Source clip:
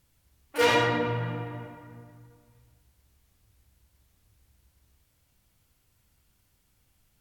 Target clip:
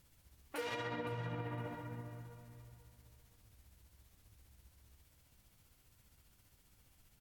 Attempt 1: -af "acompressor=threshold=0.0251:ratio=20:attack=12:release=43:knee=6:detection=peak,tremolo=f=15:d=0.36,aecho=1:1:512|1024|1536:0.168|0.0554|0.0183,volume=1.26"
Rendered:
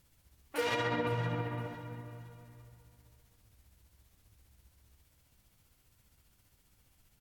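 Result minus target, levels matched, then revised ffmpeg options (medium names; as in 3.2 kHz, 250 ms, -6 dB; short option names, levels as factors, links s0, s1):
compression: peak gain reduction -8.5 dB
-af "acompressor=threshold=0.00891:ratio=20:attack=12:release=43:knee=6:detection=peak,tremolo=f=15:d=0.36,aecho=1:1:512|1024|1536:0.168|0.0554|0.0183,volume=1.26"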